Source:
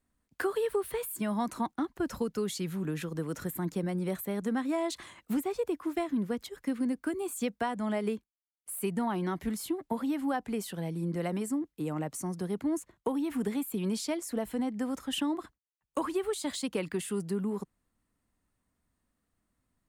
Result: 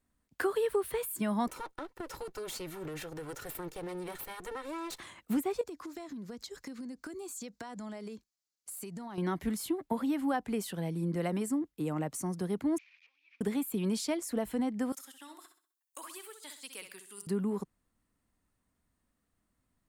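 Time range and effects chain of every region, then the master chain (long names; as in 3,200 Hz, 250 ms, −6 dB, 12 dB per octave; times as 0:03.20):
0:01.47–0:05.00: lower of the sound and its delayed copy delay 2.2 ms + low-shelf EQ 160 Hz −8.5 dB + downward compressor 5 to 1, threshold −36 dBFS
0:05.61–0:09.18: flat-topped bell 5,500 Hz +10 dB 1.1 octaves + downward compressor 12 to 1, threshold −39 dBFS
0:12.78–0:13.41: linear delta modulator 32 kbit/s, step −46.5 dBFS + downward compressor 3 to 1, threshold −49 dBFS + four-pole ladder band-pass 2,500 Hz, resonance 85%
0:14.92–0:17.27: first difference + compressor whose output falls as the input rises −47 dBFS, ratio −0.5 + flutter between parallel walls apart 11 metres, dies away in 0.44 s
whole clip: no processing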